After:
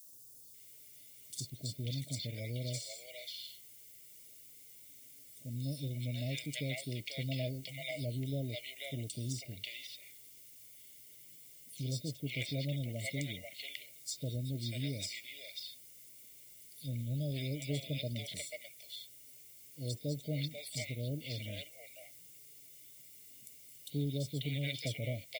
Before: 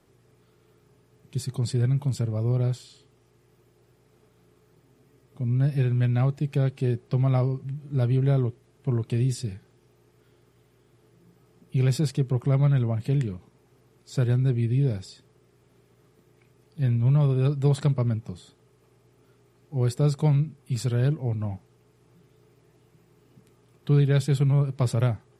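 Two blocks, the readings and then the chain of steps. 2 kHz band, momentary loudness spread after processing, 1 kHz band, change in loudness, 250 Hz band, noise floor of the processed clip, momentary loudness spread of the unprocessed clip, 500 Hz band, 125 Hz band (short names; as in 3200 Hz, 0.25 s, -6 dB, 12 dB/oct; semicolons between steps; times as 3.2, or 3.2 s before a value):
-2.0 dB, 15 LU, under -20 dB, -15.0 dB, -13.5 dB, -56 dBFS, 11 LU, -13.0 dB, -16.0 dB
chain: Chebyshev band-stop 640–2000 Hz, order 4; pre-emphasis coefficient 0.97; treble ducked by the level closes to 2300 Hz, closed at -42 dBFS; bell 170 Hz -4.5 dB 1.1 oct; comb 1.4 ms, depth 72%; small resonant body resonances 290/3300 Hz, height 11 dB, ringing for 45 ms; added noise violet -70 dBFS; three bands offset in time highs, lows, mids 50/540 ms, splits 660/4400 Hz; gain +13 dB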